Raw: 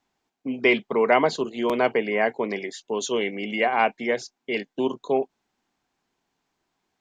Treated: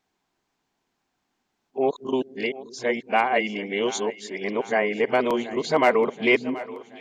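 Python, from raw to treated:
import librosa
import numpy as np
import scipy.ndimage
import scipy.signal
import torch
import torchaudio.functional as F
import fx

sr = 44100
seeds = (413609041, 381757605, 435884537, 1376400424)

y = np.flip(x).copy()
y = np.clip(y, -10.0 ** (-8.5 / 20.0), 10.0 ** (-8.5 / 20.0))
y = fx.echo_split(y, sr, split_hz=410.0, low_ms=225, high_ms=728, feedback_pct=52, wet_db=-16.0)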